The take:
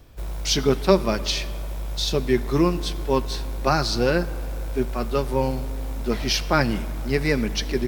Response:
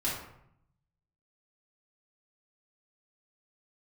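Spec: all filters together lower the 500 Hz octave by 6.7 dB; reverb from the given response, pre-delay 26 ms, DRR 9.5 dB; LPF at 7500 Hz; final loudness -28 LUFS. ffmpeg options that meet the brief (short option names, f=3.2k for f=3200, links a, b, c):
-filter_complex "[0:a]lowpass=7.5k,equalizer=f=500:t=o:g=-9,asplit=2[a][b];[1:a]atrim=start_sample=2205,adelay=26[c];[b][c]afir=irnorm=-1:irlink=0,volume=-16dB[d];[a][d]amix=inputs=2:normalize=0,volume=-2dB"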